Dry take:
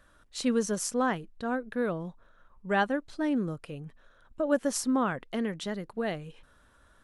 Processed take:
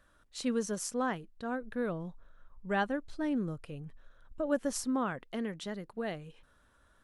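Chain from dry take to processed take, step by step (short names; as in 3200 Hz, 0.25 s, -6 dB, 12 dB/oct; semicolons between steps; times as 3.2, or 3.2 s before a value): 1.61–4.86 low shelf 89 Hz +11 dB; gain -5 dB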